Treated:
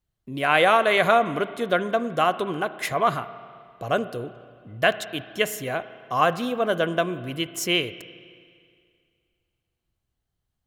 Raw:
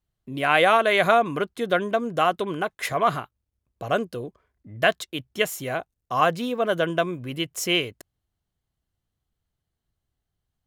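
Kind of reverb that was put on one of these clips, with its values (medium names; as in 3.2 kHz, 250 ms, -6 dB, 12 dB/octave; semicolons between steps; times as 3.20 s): spring tank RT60 2.2 s, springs 33/52 ms, chirp 45 ms, DRR 13.5 dB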